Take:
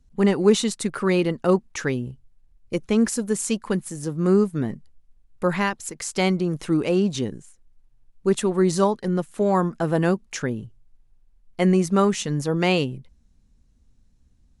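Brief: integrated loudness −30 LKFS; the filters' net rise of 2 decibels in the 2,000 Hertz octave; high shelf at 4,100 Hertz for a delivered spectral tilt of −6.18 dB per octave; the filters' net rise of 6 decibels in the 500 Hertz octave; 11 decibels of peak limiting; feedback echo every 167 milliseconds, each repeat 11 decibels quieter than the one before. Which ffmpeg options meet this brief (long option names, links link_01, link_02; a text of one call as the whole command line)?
ffmpeg -i in.wav -af "equalizer=frequency=500:width_type=o:gain=8,equalizer=frequency=2000:width_type=o:gain=3,highshelf=frequency=4100:gain=-4.5,alimiter=limit=-11.5dB:level=0:latency=1,aecho=1:1:167|334|501:0.282|0.0789|0.0221,volume=-8dB" out.wav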